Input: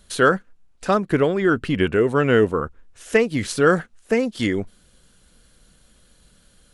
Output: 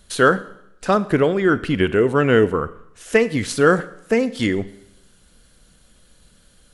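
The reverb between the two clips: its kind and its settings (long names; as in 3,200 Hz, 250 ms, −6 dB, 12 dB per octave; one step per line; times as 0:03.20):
four-comb reverb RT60 0.79 s, combs from 31 ms, DRR 15.5 dB
level +1.5 dB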